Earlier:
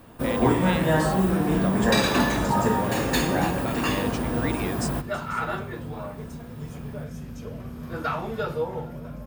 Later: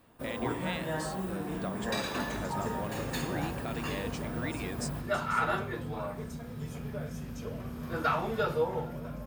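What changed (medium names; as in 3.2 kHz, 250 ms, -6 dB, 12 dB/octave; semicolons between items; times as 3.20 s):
speech -5.5 dB; first sound -11.5 dB; master: add bass shelf 380 Hz -3.5 dB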